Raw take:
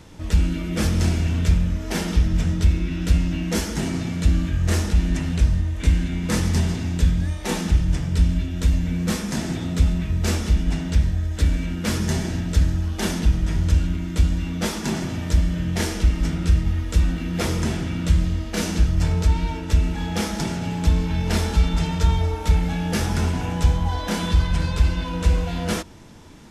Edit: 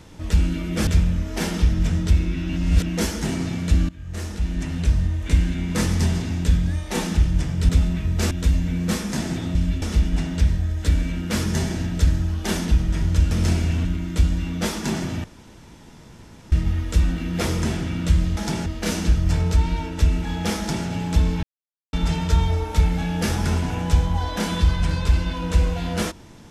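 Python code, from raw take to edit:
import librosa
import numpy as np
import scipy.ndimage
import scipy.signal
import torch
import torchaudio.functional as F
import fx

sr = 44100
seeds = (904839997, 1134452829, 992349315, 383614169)

y = fx.edit(x, sr, fx.move(start_s=0.87, length_s=0.54, to_s=13.85),
    fx.reverse_span(start_s=3.03, length_s=0.37),
    fx.fade_in_from(start_s=4.43, length_s=1.16, floor_db=-20.5),
    fx.swap(start_s=8.23, length_s=0.27, other_s=9.74, other_length_s=0.62),
    fx.room_tone_fill(start_s=15.24, length_s=1.28),
    fx.duplicate(start_s=20.29, length_s=0.29, to_s=18.37),
    fx.silence(start_s=21.14, length_s=0.5), tone=tone)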